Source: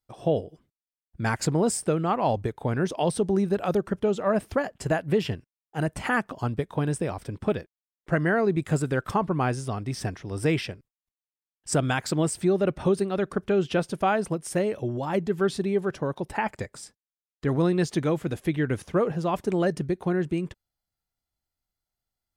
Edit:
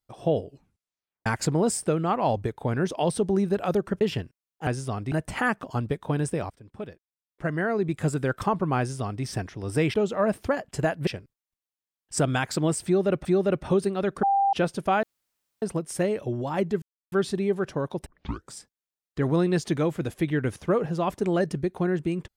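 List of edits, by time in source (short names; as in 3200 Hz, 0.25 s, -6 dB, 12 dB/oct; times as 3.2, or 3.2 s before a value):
0.44 tape stop 0.82 s
4.01–5.14 move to 10.62
7.18–8.95 fade in, from -18.5 dB
9.47–9.92 copy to 5.8
12.4–12.8 loop, 2 plays
13.38–13.68 bleep 792 Hz -18.5 dBFS
14.18 insert room tone 0.59 s
15.38 insert silence 0.30 s
16.32 tape start 0.46 s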